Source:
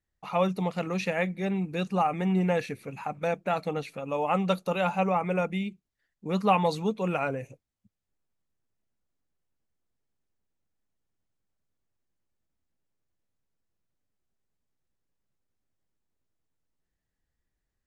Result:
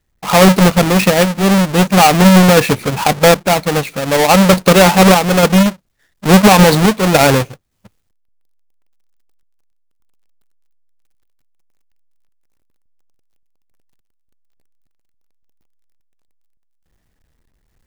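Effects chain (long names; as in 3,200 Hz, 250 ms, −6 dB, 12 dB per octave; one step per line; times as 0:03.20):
each half-wave held at its own peak
sample-and-hold tremolo
boost into a limiter +19 dB
level −1 dB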